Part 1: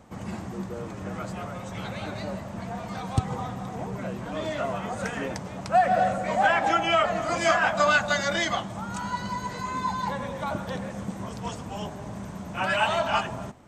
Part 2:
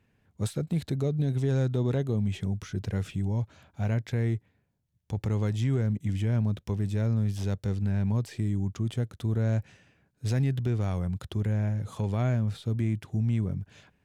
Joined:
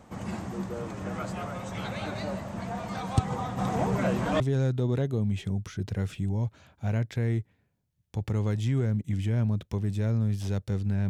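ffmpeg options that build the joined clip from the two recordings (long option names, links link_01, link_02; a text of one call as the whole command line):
ffmpeg -i cue0.wav -i cue1.wav -filter_complex "[0:a]asplit=3[link_01][link_02][link_03];[link_01]afade=type=out:start_time=3.57:duration=0.02[link_04];[link_02]acontrast=68,afade=type=in:start_time=3.57:duration=0.02,afade=type=out:start_time=4.4:duration=0.02[link_05];[link_03]afade=type=in:start_time=4.4:duration=0.02[link_06];[link_04][link_05][link_06]amix=inputs=3:normalize=0,apad=whole_dur=11.09,atrim=end=11.09,atrim=end=4.402[link_07];[1:a]atrim=start=1.358:end=8.05[link_08];[link_07][link_08]acrossfade=duration=0.004:curve1=hsin:curve2=hsin" out.wav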